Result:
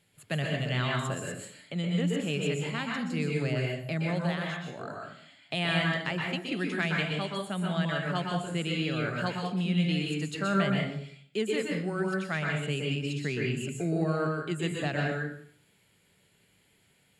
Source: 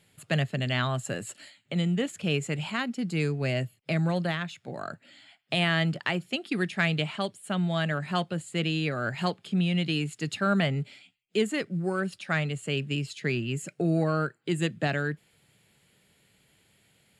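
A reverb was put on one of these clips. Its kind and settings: plate-style reverb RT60 0.6 s, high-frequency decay 0.75×, pre-delay 110 ms, DRR -1.5 dB; trim -5 dB

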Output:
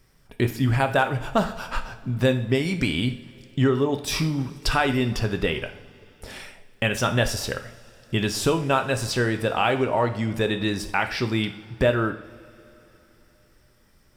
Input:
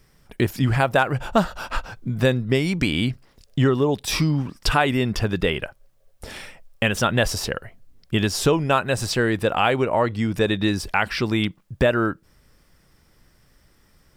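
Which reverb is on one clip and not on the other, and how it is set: two-slope reverb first 0.53 s, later 3.7 s, from -20 dB, DRR 6.5 dB; trim -3 dB

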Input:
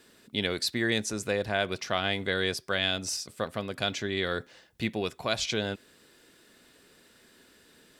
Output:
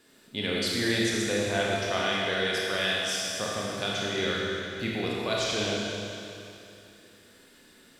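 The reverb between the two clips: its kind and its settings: Schroeder reverb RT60 2.8 s, combs from 26 ms, DRR -4.5 dB; trim -3.5 dB

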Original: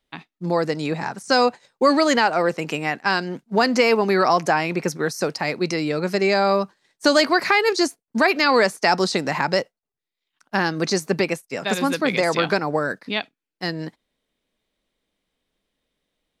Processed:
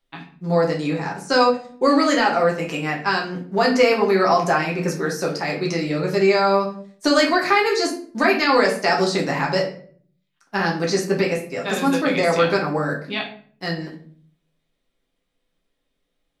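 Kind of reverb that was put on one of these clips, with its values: simulated room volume 52 m³, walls mixed, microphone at 0.79 m; trim -4 dB

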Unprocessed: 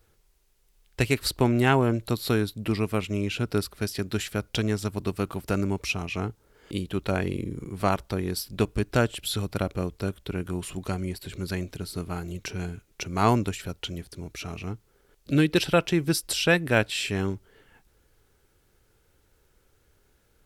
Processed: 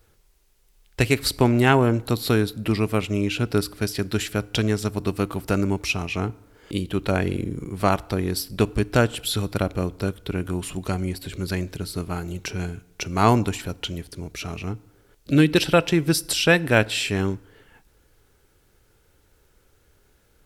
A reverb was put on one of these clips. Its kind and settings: FDN reverb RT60 0.92 s, low-frequency decay 1×, high-frequency decay 0.7×, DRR 19.5 dB; trim +4 dB

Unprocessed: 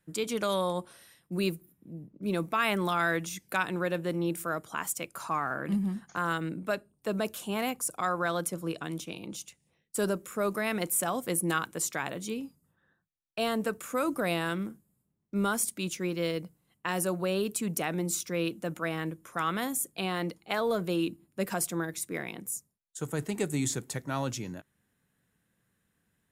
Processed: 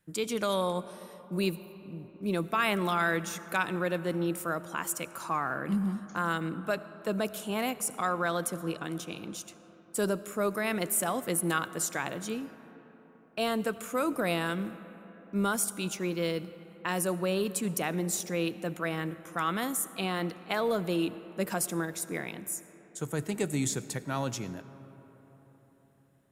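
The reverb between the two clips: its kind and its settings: algorithmic reverb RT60 4.5 s, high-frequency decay 0.4×, pre-delay 40 ms, DRR 15 dB

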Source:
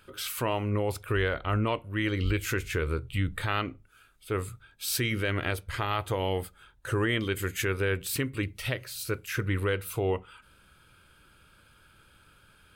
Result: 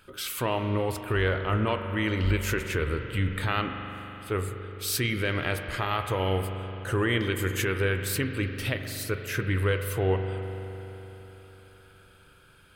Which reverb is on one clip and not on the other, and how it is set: spring tank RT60 3.8 s, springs 42 ms, chirp 65 ms, DRR 6 dB; trim +1 dB

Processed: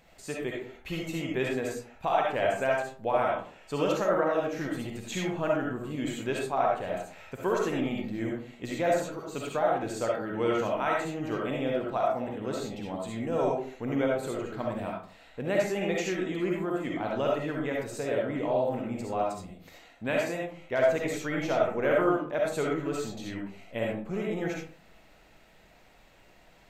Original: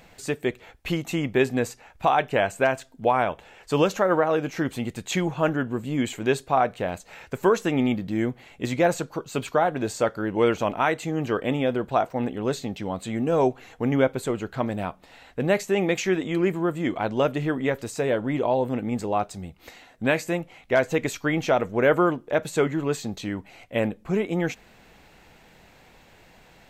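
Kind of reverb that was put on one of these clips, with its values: algorithmic reverb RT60 0.45 s, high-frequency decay 0.5×, pre-delay 25 ms, DRR -2.5 dB; trim -9.5 dB

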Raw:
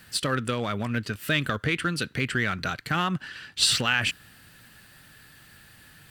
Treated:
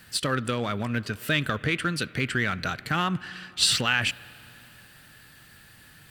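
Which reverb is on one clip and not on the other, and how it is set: spring tank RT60 3.4 s, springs 33/54 ms, chirp 50 ms, DRR 19.5 dB

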